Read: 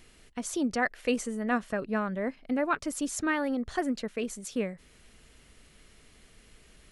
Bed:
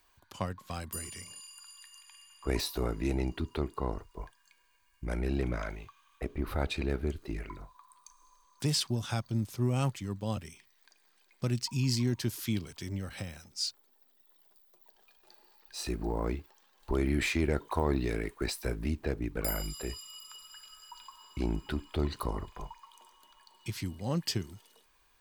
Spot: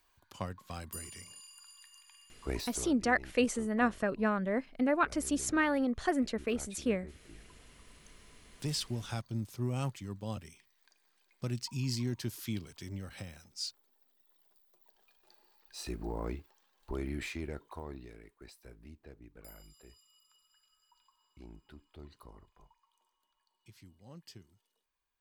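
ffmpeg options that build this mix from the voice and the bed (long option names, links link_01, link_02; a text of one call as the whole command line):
ffmpeg -i stem1.wav -i stem2.wav -filter_complex "[0:a]adelay=2300,volume=-0.5dB[link_01];[1:a]volume=8.5dB,afade=type=out:start_time=2.44:duration=0.53:silence=0.211349,afade=type=in:start_time=7.55:duration=1.26:silence=0.237137,afade=type=out:start_time=16.38:duration=1.76:silence=0.177828[link_02];[link_01][link_02]amix=inputs=2:normalize=0" out.wav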